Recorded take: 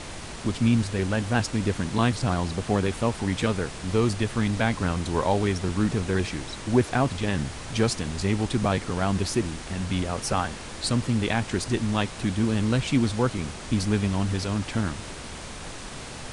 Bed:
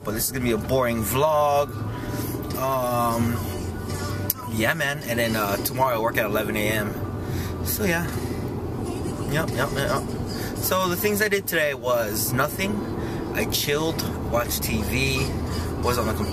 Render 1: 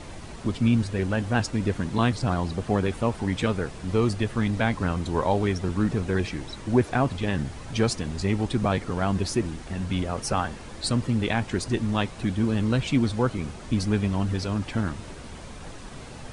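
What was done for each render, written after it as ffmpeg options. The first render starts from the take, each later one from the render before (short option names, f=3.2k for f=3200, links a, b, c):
-af "afftdn=nr=8:nf=-38"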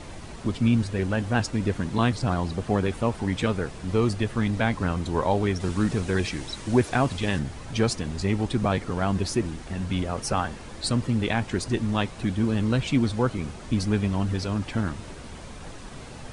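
-filter_complex "[0:a]asettb=1/sr,asplit=3[a][b][c];[a]atrim=end=5.604[d];[b]atrim=start=5.6:end=7.39,asetpts=PTS-STARTPTS,afade=t=in:d=0.004:c=qsin,afade=t=out:st=1.786:d=0.004:c=qsin,highshelf=f=2.8k:g=7.5[e];[c]atrim=start=7.386[f];[d][e]acrossfade=d=0.004:c1=hsin:c2=qsin[g];[g][f]acrossfade=d=0.004:c1=qsin:c2=hsin"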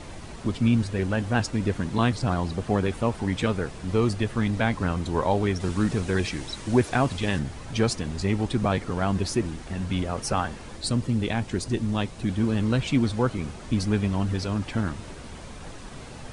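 -filter_complex "[0:a]asettb=1/sr,asplit=3[a][b][c];[a]atrim=end=10.774[d];[b]atrim=start=10.77:end=12.29,asetpts=PTS-STARTPTS,afade=t=in:d=0.004:c=qsin,afade=t=out:st=1.516:d=0.004:c=qsin,equalizer=f=1.4k:t=o:w=2.5:g=-4.5[e];[c]atrim=start=12.286[f];[d][e]acrossfade=d=0.004:c1=hsin:c2=qsin[g];[g][f]acrossfade=d=0.004:c1=qsin:c2=hsin"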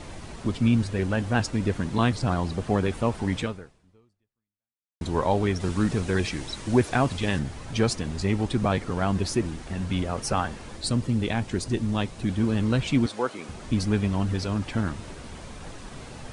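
-filter_complex "[0:a]asettb=1/sr,asplit=3[a][b][c];[a]atrim=end=13.064[d];[b]atrim=start=13.06:end=13.49,asetpts=PTS-STARTPTS,afade=t=in:d=0.004:c=qsin,afade=t=out:st=0.426:d=0.004:c=qsin,highpass=380[e];[c]atrim=start=13.486[f];[d][e]acrossfade=d=0.004:c1=hsin:c2=qsin[g];[g][f]acrossfade=d=0.004:c1=qsin:c2=hsin,asplit=2[h][i];[h]atrim=end=5.01,asetpts=PTS-STARTPTS,afade=t=out:st=3.38:d=1.63:c=exp[j];[i]atrim=start=5.01,asetpts=PTS-STARTPTS,afade=t=in:d=0.004:c=hsin[k];[j][k]concat=n=2:v=0:a=1"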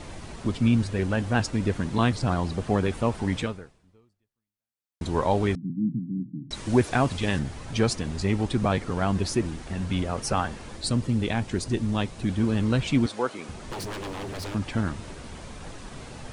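-filter_complex "[0:a]asettb=1/sr,asplit=3[a][b][c];[a]atrim=end=5.554[d];[b]atrim=start=5.55:end=6.51,asetpts=PTS-STARTPTS,afade=t=in:d=0.004:c=qsin,afade=t=out:st=0.956:d=0.004:c=qsin,asuperpass=centerf=190:order=12:qfactor=1.1[e];[c]atrim=start=6.506[f];[d][e]acrossfade=d=0.004:c1=hsin:c2=qsin[g];[g][f]acrossfade=d=0.004:c1=qsin:c2=hsin,asettb=1/sr,asplit=3[h][i][j];[h]atrim=end=13.524[k];[i]atrim=start=13.52:end=14.55,asetpts=PTS-STARTPTS,afade=t=in:d=0.004:c=qsin,afade=t=out:st=1.026:d=0.004:c=qsin,aeval=exprs='0.0355*(abs(mod(val(0)/0.0355+3,4)-2)-1)':c=same[l];[j]atrim=start=14.546[m];[k][l]acrossfade=d=0.004:c1=hsin:c2=qsin[n];[n][m]acrossfade=d=0.004:c1=qsin:c2=hsin"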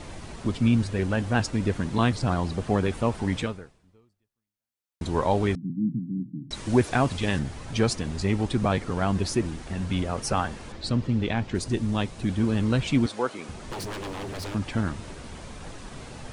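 -filter_complex "[0:a]asettb=1/sr,asplit=3[a][b][c];[a]atrim=end=10.724[d];[b]atrim=start=10.72:end=11.55,asetpts=PTS-STARTPTS,afade=t=in:d=0.004:c=qsin,afade=t=out:st=0.826:d=0.004:c=qsin,lowpass=4.7k[e];[c]atrim=start=11.546[f];[d][e]acrossfade=d=0.004:c1=hsin:c2=qsin[g];[g][f]acrossfade=d=0.004:c1=qsin:c2=hsin"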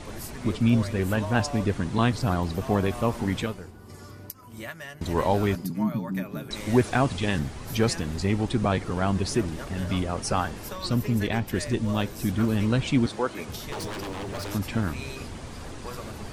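-filter_complex "[1:a]volume=-16dB[a];[0:a][a]amix=inputs=2:normalize=0"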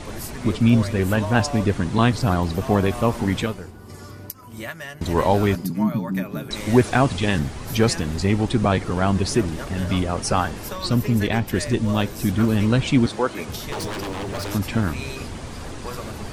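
-af "volume=5dB"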